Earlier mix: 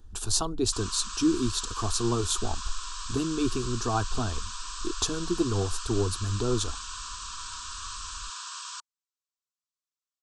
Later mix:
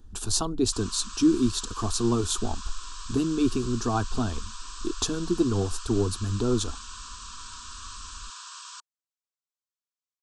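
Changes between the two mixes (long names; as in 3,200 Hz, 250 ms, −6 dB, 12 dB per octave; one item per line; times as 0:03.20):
background −3.5 dB
master: add parametric band 230 Hz +6.5 dB 0.94 octaves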